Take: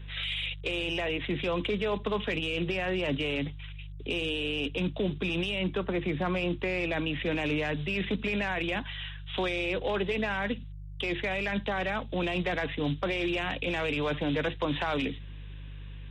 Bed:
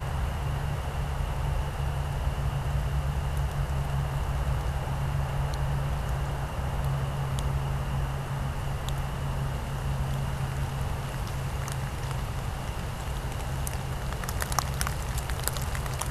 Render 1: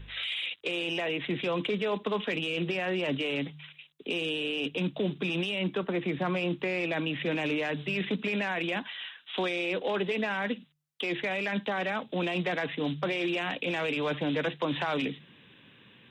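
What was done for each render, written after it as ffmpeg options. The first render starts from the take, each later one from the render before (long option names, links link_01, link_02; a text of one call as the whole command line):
ffmpeg -i in.wav -af "bandreject=frequency=50:width_type=h:width=4,bandreject=frequency=100:width_type=h:width=4,bandreject=frequency=150:width_type=h:width=4" out.wav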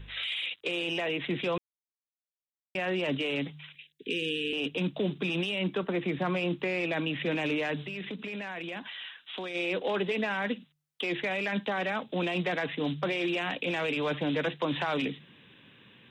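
ffmpeg -i in.wav -filter_complex "[0:a]asettb=1/sr,asplit=3[link_01][link_02][link_03];[link_01]atrim=end=3.754[link_04];[link_02]atrim=start=3.75:end=4.53,asetpts=PTS-STARTPTS,afade=type=in:duration=0.004:curve=qsin,afade=type=out:start_time=0.776:duration=0.004:curve=qsin,asuperstop=centerf=890:order=20:qfactor=0.85[link_05];[link_03]atrim=start=4.526[link_06];[link_04][link_05]acrossfade=duration=0.004:curve1=hsin:curve2=qsin[link_07];[link_07][link_06]acrossfade=duration=0.004:curve1=qsin:curve2=hsin,asplit=3[link_08][link_09][link_10];[link_08]afade=type=out:start_time=7.84:duration=0.02[link_11];[link_09]acompressor=threshold=-37dB:ratio=2.5:attack=3.2:release=140:knee=1:detection=peak,afade=type=in:start_time=7.84:duration=0.02,afade=type=out:start_time=9.54:duration=0.02[link_12];[link_10]afade=type=in:start_time=9.54:duration=0.02[link_13];[link_11][link_12][link_13]amix=inputs=3:normalize=0,asplit=3[link_14][link_15][link_16];[link_14]atrim=end=1.58,asetpts=PTS-STARTPTS,afade=type=out:start_time=1.576:duration=0.004:curve=hsin[link_17];[link_15]atrim=start=1.58:end=2.75,asetpts=PTS-STARTPTS,volume=0[link_18];[link_16]atrim=start=2.75,asetpts=PTS-STARTPTS,afade=type=in:duration=0.004:curve=hsin[link_19];[link_17][link_18][link_19]concat=n=3:v=0:a=1" out.wav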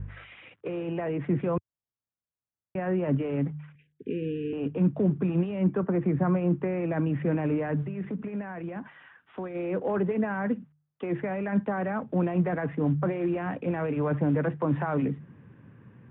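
ffmpeg -i in.wav -af "lowpass=frequency=1600:width=0.5412,lowpass=frequency=1600:width=1.3066,equalizer=frequency=100:width_type=o:width=2:gain=14.5" out.wav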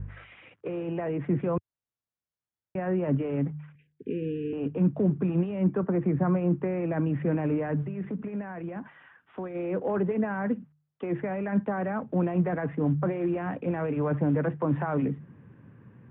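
ffmpeg -i in.wav -af "lowpass=frequency=2500:poles=1" out.wav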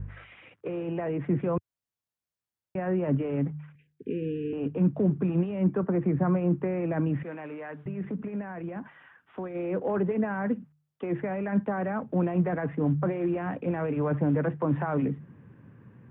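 ffmpeg -i in.wav -filter_complex "[0:a]asettb=1/sr,asplit=3[link_01][link_02][link_03];[link_01]atrim=end=7.234[link_04];[link_02]atrim=start=7.23:end=7.86,asetpts=PTS-STARTPTS,afade=type=in:duration=0.004:curve=qsin,afade=type=out:start_time=0.626:duration=0.004:curve=qsin,highpass=frequency=1300:poles=1[link_05];[link_03]atrim=start=7.856[link_06];[link_04][link_05]acrossfade=duration=0.004:curve1=hsin:curve2=qsin[link_07];[link_07][link_06]acrossfade=duration=0.004:curve1=qsin:curve2=hsin" out.wav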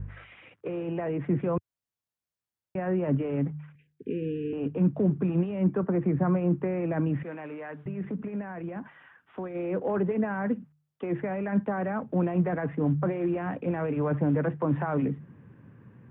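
ffmpeg -i in.wav -af anull out.wav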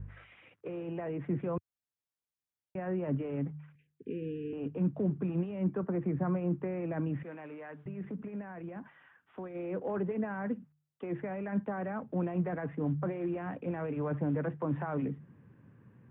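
ffmpeg -i in.wav -af "volume=-6.5dB" out.wav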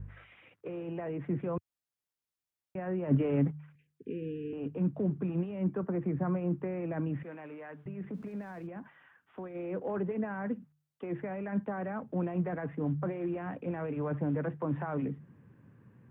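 ffmpeg -i in.wav -filter_complex "[0:a]asplit=3[link_01][link_02][link_03];[link_01]afade=type=out:start_time=3.1:duration=0.02[link_04];[link_02]acontrast=79,afade=type=in:start_time=3.1:duration=0.02,afade=type=out:start_time=3.5:duration=0.02[link_05];[link_03]afade=type=in:start_time=3.5:duration=0.02[link_06];[link_04][link_05][link_06]amix=inputs=3:normalize=0,asettb=1/sr,asplit=3[link_07][link_08][link_09];[link_07]atrim=end=8.144[link_10];[link_08]atrim=start=8.14:end=8.67,asetpts=PTS-STARTPTS,afade=type=in:duration=0.004:curve=qsin,afade=type=out:start_time=0.526:duration=0.004:curve=qsin,aeval=exprs='val(0)+0.5*0.00119*sgn(val(0))':channel_layout=same[link_11];[link_09]atrim=start=8.666[link_12];[link_10][link_11]acrossfade=duration=0.004:curve1=hsin:curve2=qsin[link_13];[link_13][link_12]acrossfade=duration=0.004:curve1=qsin:curve2=hsin" out.wav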